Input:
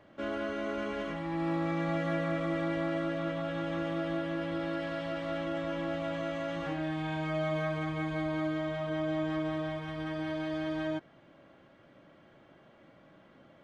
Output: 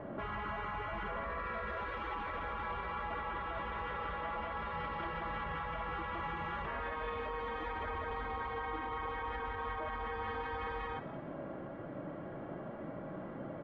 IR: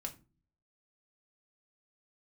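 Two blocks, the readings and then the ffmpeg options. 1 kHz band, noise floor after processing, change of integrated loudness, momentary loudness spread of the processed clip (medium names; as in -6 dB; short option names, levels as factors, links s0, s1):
+2.5 dB, -45 dBFS, -6.0 dB, 6 LU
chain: -filter_complex "[0:a]afftfilt=real='re*lt(hypot(re,im),0.0355)':imag='im*lt(hypot(re,im),0.0355)':win_size=1024:overlap=0.75,lowpass=1200,alimiter=level_in=13.3:limit=0.0631:level=0:latency=1:release=31,volume=0.075,acontrast=47,flanger=delay=4.5:depth=2.4:regen=-75:speed=0.62:shape=triangular,asplit=4[s0][s1][s2][s3];[s1]adelay=180,afreqshift=44,volume=0.2[s4];[s2]adelay=360,afreqshift=88,volume=0.07[s5];[s3]adelay=540,afreqshift=132,volume=0.0245[s6];[s0][s4][s5][s6]amix=inputs=4:normalize=0,volume=4.73"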